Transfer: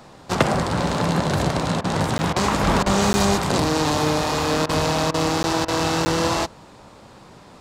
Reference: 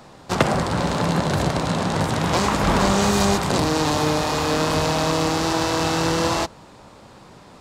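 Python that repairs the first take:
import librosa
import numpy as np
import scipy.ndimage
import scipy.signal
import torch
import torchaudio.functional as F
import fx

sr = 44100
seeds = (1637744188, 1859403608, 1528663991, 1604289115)

y = fx.fix_interpolate(x, sr, at_s=(2.18, 3.13, 5.43, 6.05), length_ms=10.0)
y = fx.fix_interpolate(y, sr, at_s=(1.81, 2.33, 2.83, 4.66, 5.11, 5.65), length_ms=30.0)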